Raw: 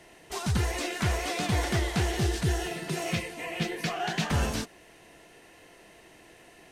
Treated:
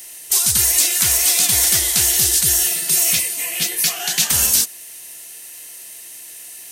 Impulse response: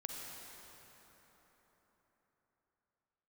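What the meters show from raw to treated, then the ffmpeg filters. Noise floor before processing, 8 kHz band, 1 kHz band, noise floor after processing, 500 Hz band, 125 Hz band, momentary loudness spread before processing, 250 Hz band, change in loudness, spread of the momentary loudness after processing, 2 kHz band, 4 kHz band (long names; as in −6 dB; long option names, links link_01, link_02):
−55 dBFS, +26.0 dB, −0.5 dB, −37 dBFS, −2.5 dB, −4.5 dB, 6 LU, −4.0 dB, +15.5 dB, 21 LU, +7.0 dB, +15.5 dB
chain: -af "crystalizer=i=8:c=0,aeval=exprs='0.473*(cos(1*acos(clip(val(0)/0.473,-1,1)))-cos(1*PI/2))+0.00376*(cos(6*acos(clip(val(0)/0.473,-1,1)))-cos(6*PI/2))':channel_layout=same,aemphasis=mode=production:type=75kf,volume=-4.5dB"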